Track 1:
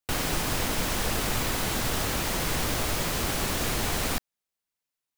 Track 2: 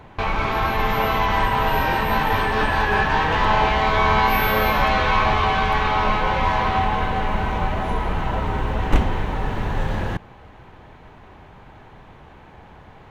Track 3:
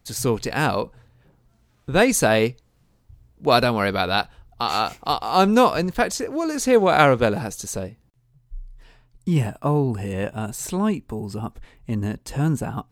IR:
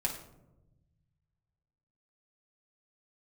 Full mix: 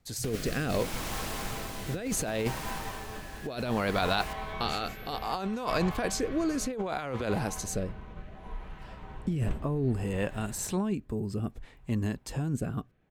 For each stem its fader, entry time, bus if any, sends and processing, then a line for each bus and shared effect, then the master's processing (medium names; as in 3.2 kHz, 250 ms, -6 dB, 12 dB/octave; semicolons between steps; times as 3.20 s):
2.28 s -4 dB -> 3.04 s -12 dB, 0.15 s, no send, echo send -20.5 dB, auto duck -6 dB, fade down 0.65 s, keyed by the third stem
-17.5 dB, 0.55 s, send -14.5 dB, no echo send, band-stop 870 Hz, Q 22; upward expansion 1.5:1, over -28 dBFS
-5.0 dB, 0.00 s, no send, no echo send, none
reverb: on, RT60 0.95 s, pre-delay 5 ms
echo: feedback delay 193 ms, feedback 57%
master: compressor with a negative ratio -27 dBFS, ratio -1; rotary cabinet horn 0.65 Hz